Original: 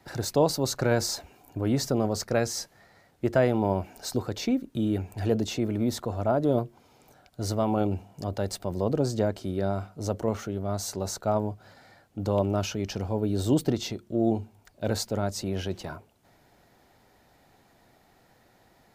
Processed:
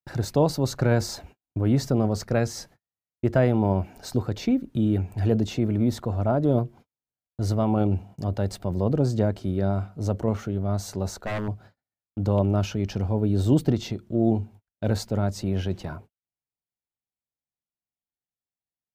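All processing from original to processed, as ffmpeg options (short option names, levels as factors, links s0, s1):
-filter_complex "[0:a]asettb=1/sr,asplit=3[s0][s1][s2];[s0]atrim=end=11.074[s3];[s1]atrim=start=11.07:end=11.48,asetpts=PTS-STARTPTS,afade=t=in:d=0.004:c=qsin,afade=t=out:st=0.406:d=0.004:c=qsin,equalizer=f=130:t=o:w=0.46:g=-15,aeval=exprs='0.0596*(abs(mod(val(0)/0.0596+3,4)-2)-1)':c=same[s4];[s2]atrim=start=11.476[s5];[s3][s4]acrossfade=d=0.004:c1=hsin:c2=qsin[s6];[s6][s5]acrossfade=d=0.004:c1=qsin:c2=hsin,agate=range=0.00447:threshold=0.00398:ratio=16:detection=peak,bass=f=250:g=7,treble=f=4000:g=-5"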